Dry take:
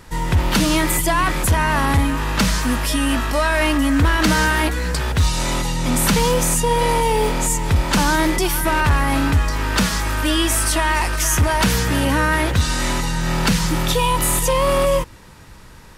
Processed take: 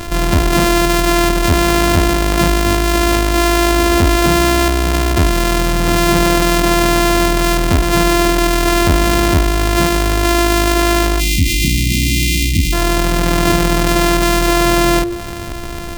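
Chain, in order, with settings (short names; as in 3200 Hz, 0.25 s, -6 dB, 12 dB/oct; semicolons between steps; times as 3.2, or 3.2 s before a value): sample sorter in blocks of 128 samples; spectral delete 11.2–12.73, 330–1900 Hz; de-hum 116 Hz, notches 38; fast leveller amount 50%; gain +2.5 dB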